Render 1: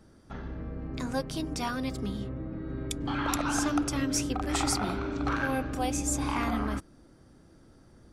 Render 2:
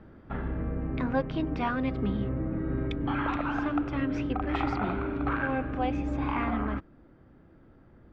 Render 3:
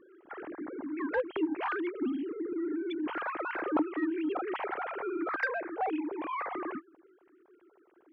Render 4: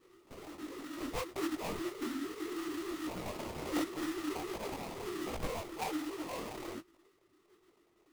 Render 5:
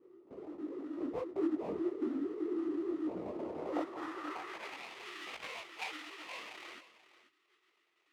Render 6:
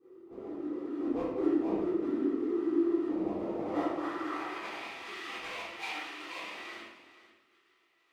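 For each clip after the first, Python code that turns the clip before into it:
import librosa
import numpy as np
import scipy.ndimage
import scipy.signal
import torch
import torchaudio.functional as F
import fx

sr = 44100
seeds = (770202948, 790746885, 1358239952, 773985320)

y1 = scipy.signal.sosfilt(scipy.signal.butter(4, 2700.0, 'lowpass', fs=sr, output='sos'), x)
y1 = fx.rider(y1, sr, range_db=4, speed_s=0.5)
y1 = y1 * 10.0 ** (2.0 / 20.0)
y2 = fx.sine_speech(y1, sr)
y2 = 10.0 ** (-16.5 / 20.0) * np.tanh(y2 / 10.0 ** (-16.5 / 20.0))
y2 = y2 * 10.0 ** (-3.5 / 20.0)
y3 = fx.sample_hold(y2, sr, seeds[0], rate_hz=1600.0, jitter_pct=20)
y3 = fx.detune_double(y3, sr, cents=45)
y3 = y3 * 10.0 ** (-2.0 / 20.0)
y4 = fx.filter_sweep_bandpass(y3, sr, from_hz=370.0, to_hz=2500.0, start_s=3.35, end_s=4.82, q=1.4)
y4 = y4 + 10.0 ** (-15.5 / 20.0) * np.pad(y4, (int(485 * sr / 1000.0), 0))[:len(y4)]
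y4 = y4 * 10.0 ** (4.5 / 20.0)
y5 = fx.room_shoebox(y4, sr, seeds[1], volume_m3=340.0, walls='mixed', distance_m=3.7)
y5 = y5 * 10.0 ** (-5.5 / 20.0)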